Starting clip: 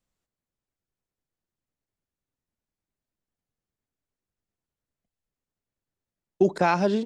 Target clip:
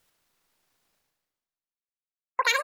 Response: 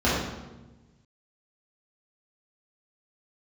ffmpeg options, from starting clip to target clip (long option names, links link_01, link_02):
-filter_complex "[0:a]aecho=1:1:157:0.251,asetrate=118188,aresample=44100,afftdn=noise_reduction=31:noise_floor=-45,asplit=2[link_01][link_02];[link_02]acompressor=threshold=-32dB:ratio=6,volume=0dB[link_03];[link_01][link_03]amix=inputs=2:normalize=0,tiltshelf=frequency=790:gain=-7,areverse,acompressor=mode=upward:threshold=-31dB:ratio=2.5,areverse,volume=-7dB"